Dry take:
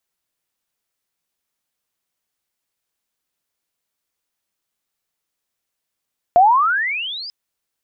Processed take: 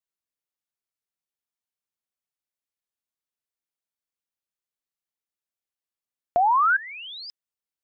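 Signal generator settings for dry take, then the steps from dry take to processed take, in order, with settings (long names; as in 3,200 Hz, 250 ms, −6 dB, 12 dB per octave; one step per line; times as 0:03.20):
glide logarithmic 680 Hz → 5,100 Hz −6.5 dBFS → −28.5 dBFS 0.94 s
brickwall limiter −11 dBFS
output level in coarse steps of 19 dB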